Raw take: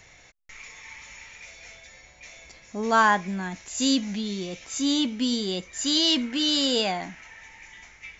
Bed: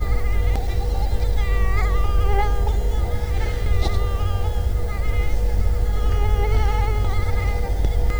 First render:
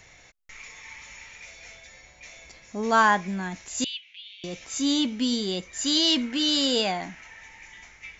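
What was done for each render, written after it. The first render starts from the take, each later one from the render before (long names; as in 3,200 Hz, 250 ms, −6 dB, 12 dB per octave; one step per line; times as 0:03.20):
0:03.84–0:04.44: flat-topped band-pass 2,900 Hz, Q 2.9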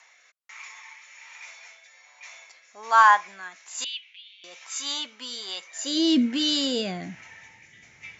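high-pass filter sweep 1,000 Hz → 120 Hz, 0:05.59–0:06.45
rotating-speaker cabinet horn 1.2 Hz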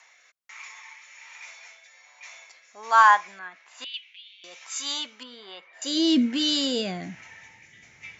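0:03.39–0:03.94: low-pass filter 2,700 Hz
0:05.23–0:05.82: high-frequency loss of the air 430 metres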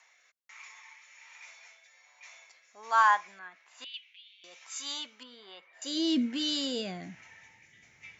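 level −7 dB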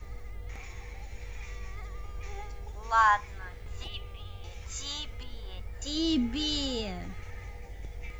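mix in bed −21.5 dB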